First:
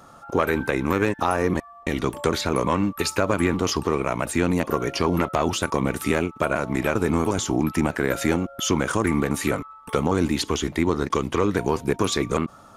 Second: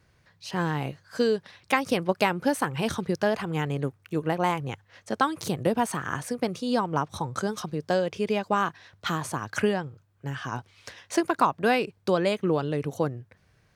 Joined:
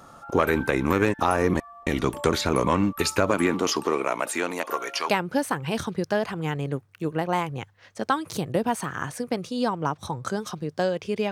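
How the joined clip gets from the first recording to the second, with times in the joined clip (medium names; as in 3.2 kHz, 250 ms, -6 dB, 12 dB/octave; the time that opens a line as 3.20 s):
first
3.29–5.09 s: high-pass 160 Hz -> 900 Hz
5.09 s: go over to second from 2.20 s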